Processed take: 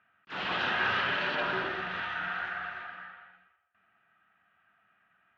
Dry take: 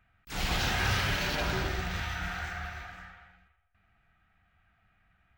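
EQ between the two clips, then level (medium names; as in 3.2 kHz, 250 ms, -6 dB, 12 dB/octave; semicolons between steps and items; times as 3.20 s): cabinet simulation 270–2700 Hz, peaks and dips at 300 Hz -3 dB, 480 Hz -3 dB, 770 Hz -6 dB, 2.2 kHz -10 dB; tilt EQ +1.5 dB/octave; +5.0 dB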